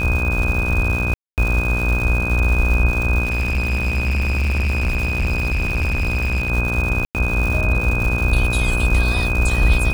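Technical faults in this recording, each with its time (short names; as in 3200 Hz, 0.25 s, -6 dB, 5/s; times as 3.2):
buzz 60 Hz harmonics 27 -23 dBFS
crackle 330/s -24 dBFS
tone 2500 Hz -22 dBFS
1.14–1.38 gap 0.238 s
3.24–6.5 clipped -16 dBFS
7.05–7.15 gap 98 ms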